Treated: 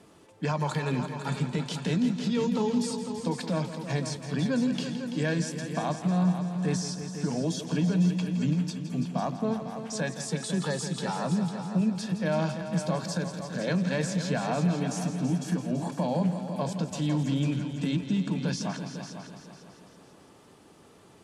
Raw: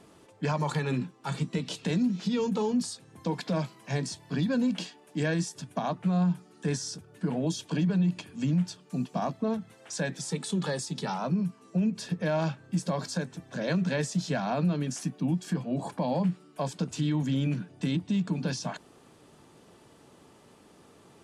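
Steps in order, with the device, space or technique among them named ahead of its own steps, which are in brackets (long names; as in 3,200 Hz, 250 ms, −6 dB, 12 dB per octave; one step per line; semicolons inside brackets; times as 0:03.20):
multi-head tape echo (echo machine with several playback heads 167 ms, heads all three, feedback 45%, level −12 dB; tape wow and flutter 20 cents)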